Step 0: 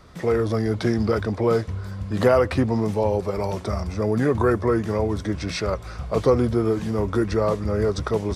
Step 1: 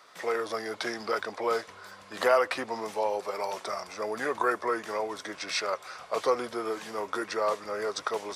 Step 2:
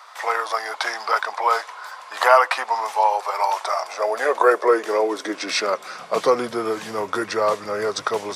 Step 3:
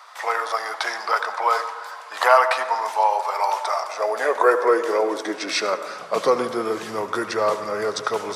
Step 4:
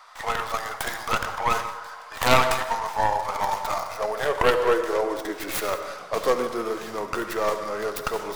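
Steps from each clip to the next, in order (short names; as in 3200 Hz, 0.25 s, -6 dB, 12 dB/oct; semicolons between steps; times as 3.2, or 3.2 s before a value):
HPF 740 Hz 12 dB/oct
high-pass sweep 870 Hz -> 110 Hz, 3.57–6.87; gain +7.5 dB
reverb RT60 1.4 s, pre-delay 68 ms, DRR 10.5 dB; gain -1 dB
tracing distortion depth 0.39 ms; non-linear reverb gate 0.22 s flat, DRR 11 dB; gain -4 dB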